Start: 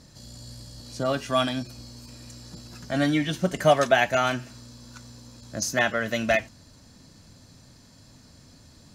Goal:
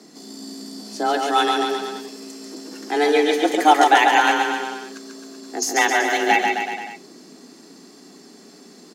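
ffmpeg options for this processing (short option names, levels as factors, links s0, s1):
-af "afreqshift=150,aecho=1:1:140|266|379.4|481.5|573.3:0.631|0.398|0.251|0.158|0.1,volume=1.68"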